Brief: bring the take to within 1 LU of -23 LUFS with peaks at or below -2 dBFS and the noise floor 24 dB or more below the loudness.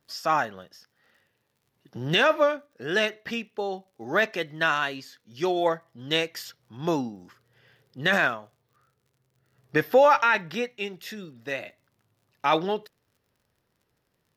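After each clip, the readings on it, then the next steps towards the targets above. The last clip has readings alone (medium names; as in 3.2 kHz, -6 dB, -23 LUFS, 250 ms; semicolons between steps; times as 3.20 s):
tick rate 44 per s; loudness -25.5 LUFS; peak level -9.0 dBFS; loudness target -23.0 LUFS
-> de-click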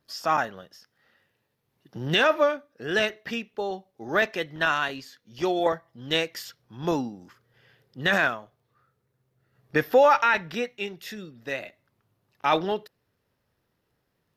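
tick rate 0 per s; loudness -25.5 LUFS; peak level -9.0 dBFS; loudness target -23.0 LUFS
-> trim +2.5 dB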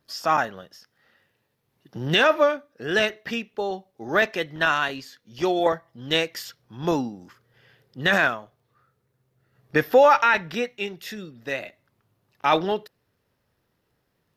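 loudness -23.0 LUFS; peak level -6.5 dBFS; noise floor -74 dBFS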